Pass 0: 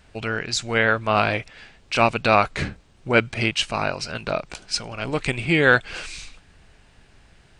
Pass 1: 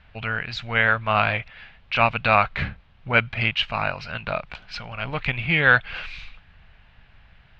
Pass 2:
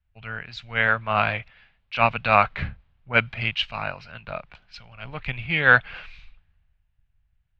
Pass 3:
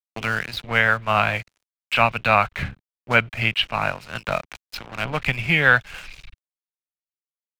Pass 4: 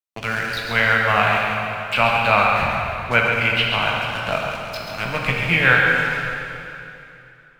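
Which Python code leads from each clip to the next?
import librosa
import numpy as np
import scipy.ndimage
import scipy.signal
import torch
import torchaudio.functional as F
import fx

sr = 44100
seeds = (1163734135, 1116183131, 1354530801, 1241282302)

y1 = scipy.signal.sosfilt(scipy.signal.butter(4, 3400.0, 'lowpass', fs=sr, output='sos'), x)
y1 = fx.peak_eq(y1, sr, hz=350.0, db=-14.5, octaves=1.2)
y1 = y1 * 10.0 ** (2.0 / 20.0)
y2 = fx.band_widen(y1, sr, depth_pct=70)
y2 = y2 * 10.0 ** (-3.5 / 20.0)
y3 = np.sign(y2) * np.maximum(np.abs(y2) - 10.0 ** (-45.5 / 20.0), 0.0)
y3 = fx.band_squash(y3, sr, depth_pct=70)
y3 = y3 * 10.0 ** (3.5 / 20.0)
y4 = y3 + 10.0 ** (-6.5 / 20.0) * np.pad(y3, (int(136 * sr / 1000.0), 0))[:len(y3)]
y4 = fx.rev_plate(y4, sr, seeds[0], rt60_s=2.9, hf_ratio=0.9, predelay_ms=0, drr_db=-1.0)
y4 = y4 * 10.0 ** (-1.0 / 20.0)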